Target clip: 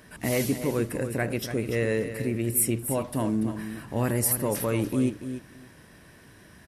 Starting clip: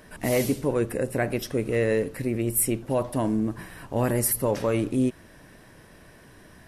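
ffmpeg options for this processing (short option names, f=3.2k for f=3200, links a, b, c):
-af "highpass=48,equalizer=f=610:t=o:w=1.7:g=-4.5,aecho=1:1:289|578:0.316|0.0506"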